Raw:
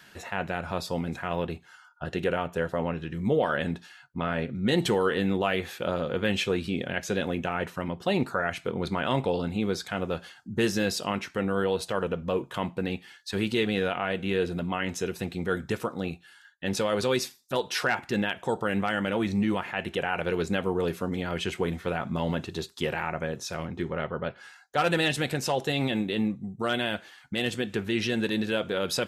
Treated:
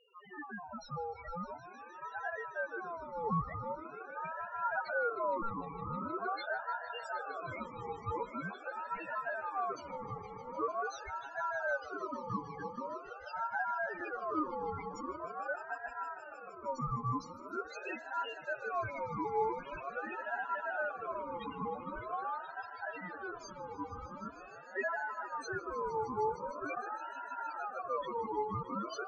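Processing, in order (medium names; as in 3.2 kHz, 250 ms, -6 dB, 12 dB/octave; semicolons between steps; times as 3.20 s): loudest bins only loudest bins 1; echo with a slow build-up 154 ms, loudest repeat 5, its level -17 dB; ring modulator with a swept carrier 910 Hz, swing 30%, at 0.44 Hz; trim +1 dB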